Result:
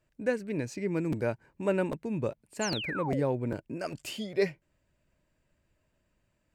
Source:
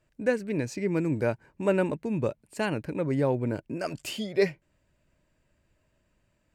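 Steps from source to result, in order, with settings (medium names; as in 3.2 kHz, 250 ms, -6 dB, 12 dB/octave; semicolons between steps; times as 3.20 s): painted sound fall, 2.61–3.23 s, 390–7600 Hz -33 dBFS; crackling interface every 0.40 s, samples 256, repeat, from 0.72 s; trim -3.5 dB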